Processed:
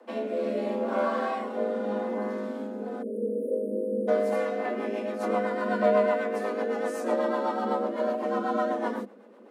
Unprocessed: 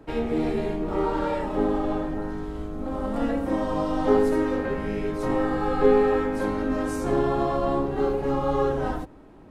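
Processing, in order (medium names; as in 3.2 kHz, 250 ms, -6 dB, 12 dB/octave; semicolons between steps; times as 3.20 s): spectral selection erased 3.02–4.08 s, 450–8500 Hz; frequency shift +200 Hz; rotary cabinet horn 0.75 Hz, later 8 Hz, at 4.07 s; trim -1 dB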